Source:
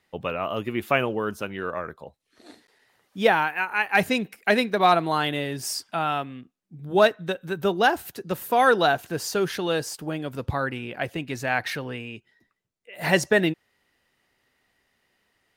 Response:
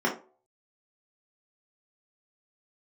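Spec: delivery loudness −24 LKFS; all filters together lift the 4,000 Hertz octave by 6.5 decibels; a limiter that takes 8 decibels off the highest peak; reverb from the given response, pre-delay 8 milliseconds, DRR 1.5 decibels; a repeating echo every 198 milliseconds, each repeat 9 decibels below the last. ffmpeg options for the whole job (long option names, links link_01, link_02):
-filter_complex "[0:a]equalizer=frequency=4000:width_type=o:gain=8,alimiter=limit=-12.5dB:level=0:latency=1,aecho=1:1:198|396|594|792:0.355|0.124|0.0435|0.0152,asplit=2[link_01][link_02];[1:a]atrim=start_sample=2205,adelay=8[link_03];[link_02][link_03]afir=irnorm=-1:irlink=0,volume=-14dB[link_04];[link_01][link_04]amix=inputs=2:normalize=0,volume=-1.5dB"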